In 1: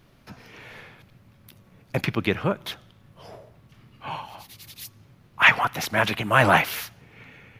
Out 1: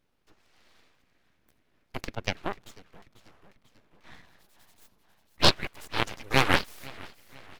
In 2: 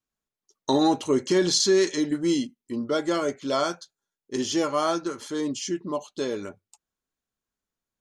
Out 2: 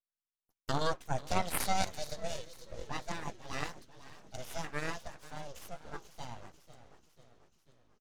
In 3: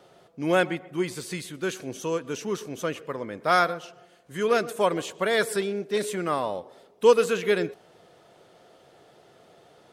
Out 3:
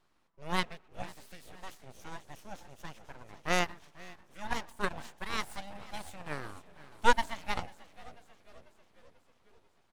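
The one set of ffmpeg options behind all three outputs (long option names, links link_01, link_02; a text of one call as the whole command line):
ffmpeg -i in.wav -filter_complex "[0:a]asplit=8[link_01][link_02][link_03][link_04][link_05][link_06][link_07][link_08];[link_02]adelay=492,afreqshift=-51,volume=-11.5dB[link_09];[link_03]adelay=984,afreqshift=-102,volume=-16.2dB[link_10];[link_04]adelay=1476,afreqshift=-153,volume=-21dB[link_11];[link_05]adelay=1968,afreqshift=-204,volume=-25.7dB[link_12];[link_06]adelay=2460,afreqshift=-255,volume=-30.4dB[link_13];[link_07]adelay=2952,afreqshift=-306,volume=-35.2dB[link_14];[link_08]adelay=3444,afreqshift=-357,volume=-39.9dB[link_15];[link_01][link_09][link_10][link_11][link_12][link_13][link_14][link_15]amix=inputs=8:normalize=0,aeval=exprs='abs(val(0))':channel_layout=same,aeval=exprs='0.891*(cos(1*acos(clip(val(0)/0.891,-1,1)))-cos(1*PI/2))+0.0355*(cos(3*acos(clip(val(0)/0.891,-1,1)))-cos(3*PI/2))+0.0891*(cos(7*acos(clip(val(0)/0.891,-1,1)))-cos(7*PI/2))':channel_layout=same,volume=-1dB" out.wav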